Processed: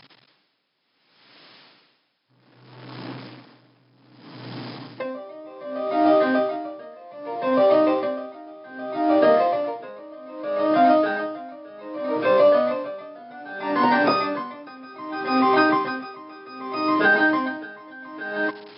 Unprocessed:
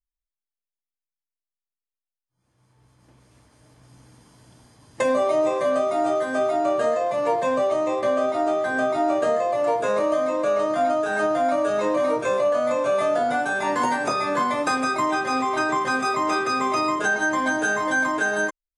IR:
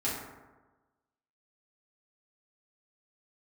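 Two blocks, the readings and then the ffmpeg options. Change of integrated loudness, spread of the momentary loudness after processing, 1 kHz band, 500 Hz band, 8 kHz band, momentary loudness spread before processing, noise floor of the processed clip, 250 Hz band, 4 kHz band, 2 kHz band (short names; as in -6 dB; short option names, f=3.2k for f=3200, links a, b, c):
+1.0 dB, 22 LU, -1.0 dB, -0.5 dB, under -40 dB, 2 LU, -66 dBFS, +3.0 dB, -0.5 dB, -1.0 dB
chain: -filter_complex "[0:a]aeval=exprs='val(0)+0.5*0.0211*sgn(val(0))':c=same,equalizer=f=290:t=o:w=0.57:g=5,aeval=exprs='0.355*(cos(1*acos(clip(val(0)/0.355,-1,1)))-cos(1*PI/2))+0.00251*(cos(4*acos(clip(val(0)/0.355,-1,1)))-cos(4*PI/2))':c=same,asplit=2[a][b];[1:a]atrim=start_sample=2205[c];[b][c]afir=irnorm=-1:irlink=0,volume=-24dB[d];[a][d]amix=inputs=2:normalize=0,afftfilt=real='re*between(b*sr/4096,110,5300)':imag='im*between(b*sr/4096,110,5300)':win_size=4096:overlap=0.75,aeval=exprs='val(0)*pow(10,-25*(0.5-0.5*cos(2*PI*0.64*n/s))/20)':c=same,volume=4dB"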